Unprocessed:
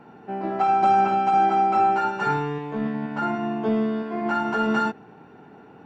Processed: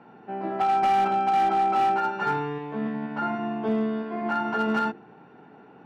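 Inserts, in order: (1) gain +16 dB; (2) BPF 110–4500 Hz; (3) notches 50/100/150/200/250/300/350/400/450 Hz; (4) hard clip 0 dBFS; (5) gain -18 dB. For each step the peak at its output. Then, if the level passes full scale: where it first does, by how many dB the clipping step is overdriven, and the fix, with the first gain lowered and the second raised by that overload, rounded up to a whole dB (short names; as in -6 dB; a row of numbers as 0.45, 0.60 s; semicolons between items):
+5.5, +6.0, +5.5, 0.0, -18.0 dBFS; step 1, 5.5 dB; step 1 +10 dB, step 5 -12 dB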